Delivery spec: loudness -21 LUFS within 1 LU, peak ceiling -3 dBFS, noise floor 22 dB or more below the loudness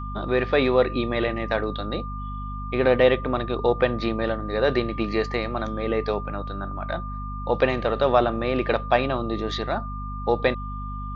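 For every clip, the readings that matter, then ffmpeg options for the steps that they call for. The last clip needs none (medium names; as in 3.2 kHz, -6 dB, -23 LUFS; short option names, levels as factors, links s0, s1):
hum 50 Hz; highest harmonic 250 Hz; hum level -30 dBFS; steady tone 1.2 kHz; tone level -35 dBFS; loudness -24.5 LUFS; peak level -5.5 dBFS; loudness target -21.0 LUFS
-> -af "bandreject=f=50:t=h:w=4,bandreject=f=100:t=h:w=4,bandreject=f=150:t=h:w=4,bandreject=f=200:t=h:w=4,bandreject=f=250:t=h:w=4"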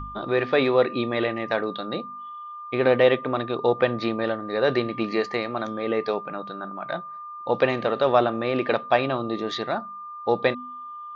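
hum not found; steady tone 1.2 kHz; tone level -35 dBFS
-> -af "bandreject=f=1200:w=30"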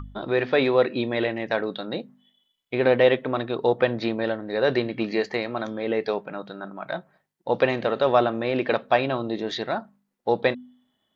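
steady tone not found; loudness -24.5 LUFS; peak level -5.5 dBFS; loudness target -21.0 LUFS
-> -af "volume=1.5,alimiter=limit=0.708:level=0:latency=1"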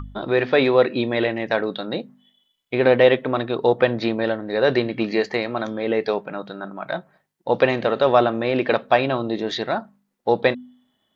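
loudness -21.0 LUFS; peak level -3.0 dBFS; noise floor -73 dBFS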